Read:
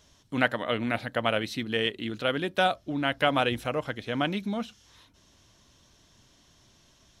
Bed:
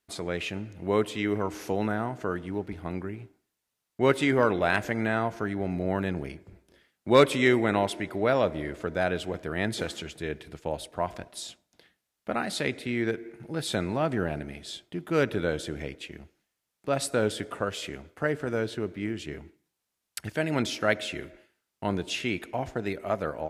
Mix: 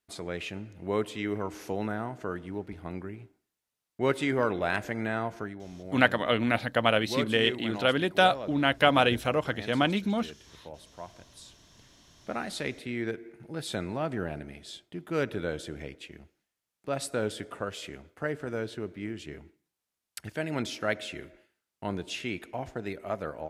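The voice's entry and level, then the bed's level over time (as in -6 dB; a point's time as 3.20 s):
5.60 s, +2.5 dB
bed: 5.40 s -4 dB
5.61 s -13.5 dB
11.26 s -13.5 dB
12.04 s -4.5 dB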